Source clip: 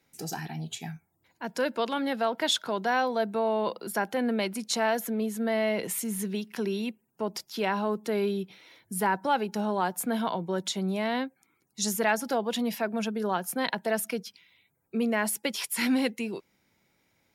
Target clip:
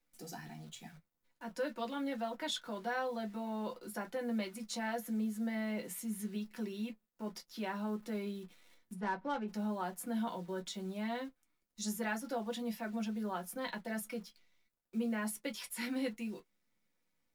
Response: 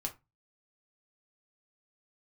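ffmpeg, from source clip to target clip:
-filter_complex "[0:a]acrusher=bits=9:dc=4:mix=0:aa=0.000001,asplit=3[link_01][link_02][link_03];[link_01]afade=type=out:start_time=8.93:duration=0.02[link_04];[link_02]adynamicsmooth=sensitivity=3:basefreq=1600,afade=type=in:start_time=8.93:duration=0.02,afade=type=out:start_time=9.47:duration=0.02[link_05];[link_03]afade=type=in:start_time=9.47:duration=0.02[link_06];[link_04][link_05][link_06]amix=inputs=3:normalize=0[link_07];[1:a]atrim=start_sample=2205,atrim=end_sample=3528,asetrate=74970,aresample=44100[link_08];[link_07][link_08]afir=irnorm=-1:irlink=0,volume=-7.5dB"

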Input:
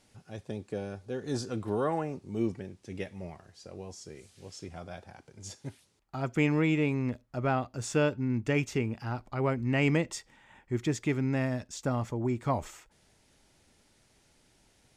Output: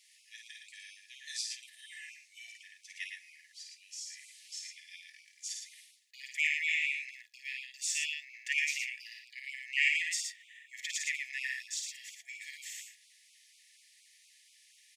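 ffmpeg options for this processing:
ffmpeg -i in.wav -af "aecho=1:1:52.48|113.7:0.631|0.562,afftfilt=real='re*(1-between(b*sr/4096,350,1700))':imag='im*(1-between(b*sr/4096,350,1700))':win_size=4096:overlap=0.75,afftfilt=real='re*gte(b*sr/1024,650*pow(2200/650,0.5+0.5*sin(2*PI*4.2*pts/sr)))':imag='im*gte(b*sr/1024,650*pow(2200/650,0.5+0.5*sin(2*PI*4.2*pts/sr)))':win_size=1024:overlap=0.75,volume=4dB" out.wav

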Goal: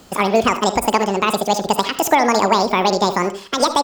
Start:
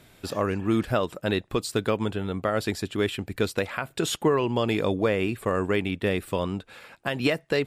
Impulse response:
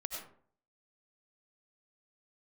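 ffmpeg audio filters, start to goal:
-filter_complex "[0:a]asplit=2[link_01][link_02];[link_02]adelay=151.6,volume=-15dB,highshelf=frequency=4000:gain=-3.41[link_03];[link_01][link_03]amix=inputs=2:normalize=0,asplit=2[link_04][link_05];[1:a]atrim=start_sample=2205,lowshelf=frequency=500:gain=11[link_06];[link_05][link_06]afir=irnorm=-1:irlink=0,volume=-12dB[link_07];[link_04][link_07]amix=inputs=2:normalize=0,asetrate=88200,aresample=44100,volume=6dB"

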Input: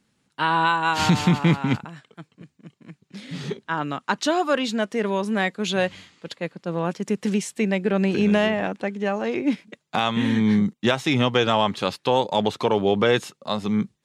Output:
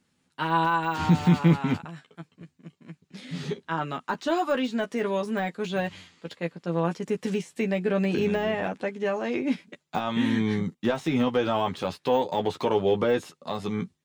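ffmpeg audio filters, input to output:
ffmpeg -i in.wav -filter_complex "[0:a]deesser=0.95,asplit=2[link_01][link_02];[link_02]adelay=12,volume=-5dB[link_03];[link_01][link_03]amix=inputs=2:normalize=0,volume=-3.5dB" out.wav

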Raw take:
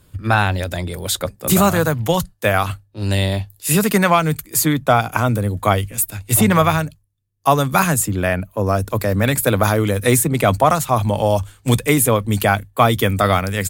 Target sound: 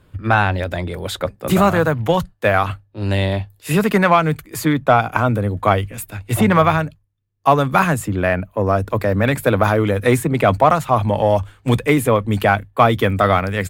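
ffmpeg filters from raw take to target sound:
ffmpeg -i in.wav -filter_complex "[0:a]bass=frequency=250:gain=-3,treble=frequency=4000:gain=-15,asplit=2[link_01][link_02];[link_02]asoftclip=type=tanh:threshold=-14dB,volume=-9dB[link_03];[link_01][link_03]amix=inputs=2:normalize=0" out.wav

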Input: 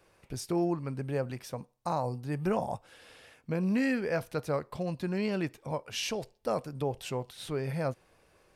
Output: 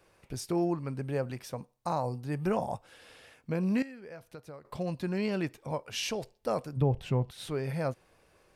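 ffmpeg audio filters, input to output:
ffmpeg -i in.wav -filter_complex "[0:a]asettb=1/sr,asplit=3[link_01][link_02][link_03];[link_01]atrim=end=3.824[link_04];[link_02]atrim=start=3.82:end=4.65,asetpts=PTS-STARTPTS,afade=type=in:duration=0.004:curve=qsin,afade=type=out:start_time=0.826:duration=0.004:curve=qsin,acompressor=threshold=-43dB:ratio=10[link_05];[link_03]atrim=start=4.646[link_06];[link_04][link_05]acrossfade=duration=0.004:curve1=hsin:curve2=qsin[link_07];[link_07][link_06]acrossfade=duration=0.004:curve1=qsin:curve2=hsin,asplit=3[link_08][link_09][link_10];[link_08]afade=type=out:start_time=6.76:duration=0.02[link_11];[link_09]bass=frequency=250:gain=12,treble=frequency=4000:gain=-12,afade=type=in:start_time=6.76:duration=0.02,afade=type=out:start_time=7.3:duration=0.02[link_12];[link_10]afade=type=in:start_time=7.3:duration=0.02[link_13];[link_11][link_12][link_13]amix=inputs=3:normalize=0" out.wav

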